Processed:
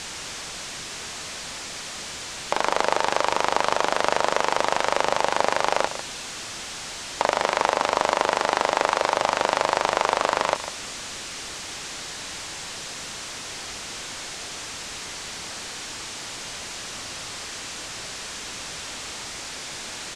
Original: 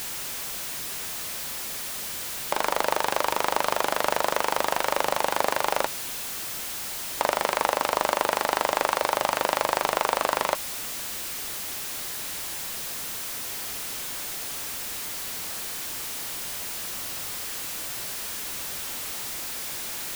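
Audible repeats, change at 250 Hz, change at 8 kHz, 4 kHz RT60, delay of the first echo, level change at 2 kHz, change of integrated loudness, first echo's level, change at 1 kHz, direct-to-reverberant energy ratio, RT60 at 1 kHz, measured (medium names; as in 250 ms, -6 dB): 1, +3.0 dB, -0.5 dB, no reverb, 149 ms, +3.0 dB, +1.0 dB, -12.0 dB, +3.0 dB, no reverb, no reverb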